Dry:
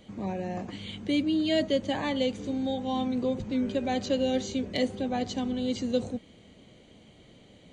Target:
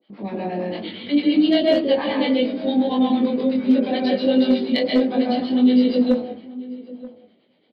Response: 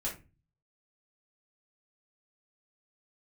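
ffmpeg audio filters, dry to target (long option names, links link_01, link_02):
-filter_complex "[0:a]highpass=frequency=230:width=0.5412,highpass=frequency=230:width=1.3066,agate=range=-15dB:threshold=-47dB:ratio=16:detection=peak,flanger=delay=2.4:depth=6.9:regen=-57:speed=1.8:shape=sinusoidal,acrossover=split=600[link_01][link_02];[link_01]aeval=exprs='val(0)*(1-1/2+1/2*cos(2*PI*8.7*n/s))':channel_layout=same[link_03];[link_02]aeval=exprs='val(0)*(1-1/2-1/2*cos(2*PI*8.7*n/s))':channel_layout=same[link_04];[link_03][link_04]amix=inputs=2:normalize=0,asplit=2[link_05][link_06];[1:a]atrim=start_sample=2205,lowshelf=frequency=480:gain=5,adelay=130[link_07];[link_06][link_07]afir=irnorm=-1:irlink=0,volume=-3dB[link_08];[link_05][link_08]amix=inputs=2:normalize=0,aresample=11025,aresample=44100,asoftclip=type=hard:threshold=-20.5dB,flanger=delay=20:depth=2.5:speed=0.69,asplit=2[link_09][link_10];[link_10]adelay=932.9,volume=-18dB,highshelf=frequency=4000:gain=-21[link_11];[link_09][link_11]amix=inputs=2:normalize=0,alimiter=level_in=23dB:limit=-1dB:release=50:level=0:latency=1,volume=-6.5dB"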